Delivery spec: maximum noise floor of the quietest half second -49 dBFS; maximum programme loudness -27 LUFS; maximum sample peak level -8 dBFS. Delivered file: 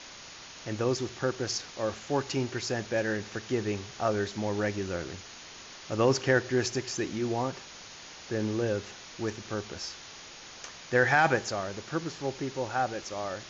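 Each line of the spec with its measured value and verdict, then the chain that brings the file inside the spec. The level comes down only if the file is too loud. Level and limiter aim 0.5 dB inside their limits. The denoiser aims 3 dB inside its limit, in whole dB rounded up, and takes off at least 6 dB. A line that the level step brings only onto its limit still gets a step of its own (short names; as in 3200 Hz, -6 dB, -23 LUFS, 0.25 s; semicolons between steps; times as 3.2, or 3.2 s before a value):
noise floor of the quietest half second -47 dBFS: fail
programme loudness -30.5 LUFS: OK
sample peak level -11.5 dBFS: OK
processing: denoiser 6 dB, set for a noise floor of -47 dBFS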